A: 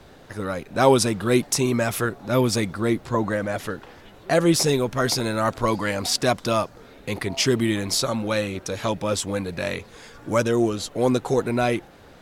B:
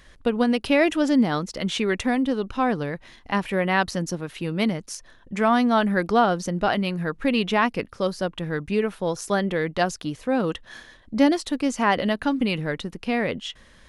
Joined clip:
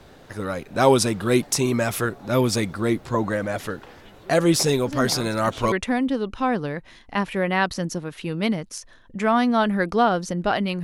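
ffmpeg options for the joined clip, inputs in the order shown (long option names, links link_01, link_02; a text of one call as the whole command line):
ffmpeg -i cue0.wav -i cue1.wav -filter_complex "[1:a]asplit=2[link_01][link_02];[0:a]apad=whole_dur=10.83,atrim=end=10.83,atrim=end=5.722[link_03];[link_02]atrim=start=1.888:end=7[link_04];[link_01]atrim=start=1.04:end=1.89,asetpts=PTS-STARTPTS,volume=-11dB,afade=type=in:duration=0.004:curve=hsin,afade=type=out:start_time=0.846:duration=0.004:curve=hsin,adelay=4870[link_05];[link_03][link_04]acrossfade=duration=0.004:curve1=hsin:curve2=hsin[link_06];[link_06][link_05]amix=inputs=2:normalize=0" out.wav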